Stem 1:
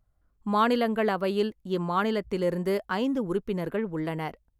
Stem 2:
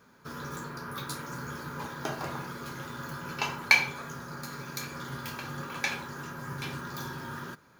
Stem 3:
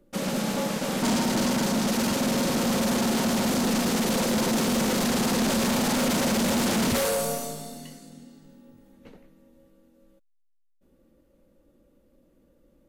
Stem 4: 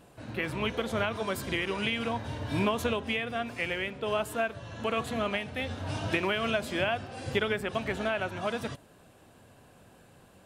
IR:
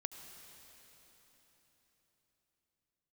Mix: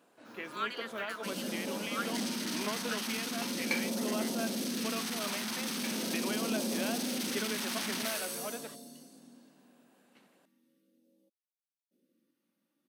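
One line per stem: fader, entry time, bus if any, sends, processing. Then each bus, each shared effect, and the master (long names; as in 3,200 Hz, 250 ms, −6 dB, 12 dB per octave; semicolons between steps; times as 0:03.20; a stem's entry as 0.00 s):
−5.5 dB, 0.00 s, no send, elliptic high-pass filter 1,300 Hz; high-shelf EQ 10,000 Hz −11 dB
−14.0 dB, 0.00 s, no send, no processing
−7.0 dB, 1.10 s, no send, notch filter 7,200 Hz, Q 5.5; all-pass phaser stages 2, 0.41 Hz, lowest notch 470–1,500 Hz
−9.5 dB, 0.00 s, no send, no processing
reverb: not used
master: high-pass filter 220 Hz 24 dB per octave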